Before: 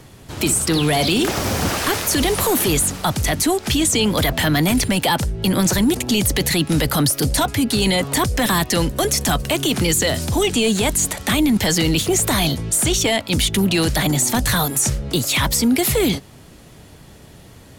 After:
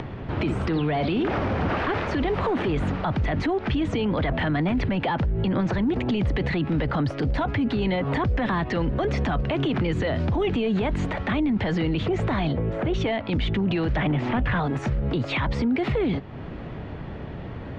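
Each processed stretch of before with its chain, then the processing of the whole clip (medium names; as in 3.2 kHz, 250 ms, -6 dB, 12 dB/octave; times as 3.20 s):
12.53–12.94 s: low-pass 2.9 kHz + peaking EQ 510 Hz +10 dB 0.74 oct
13.96–14.60 s: resonant high shelf 3.7 kHz -7 dB, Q 3 + hard clipper -13.5 dBFS + decimation joined by straight lines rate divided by 3×
whole clip: Bessel low-pass 1.8 kHz, order 4; peak limiter -21.5 dBFS; upward compressor, threshold -31 dBFS; trim +4 dB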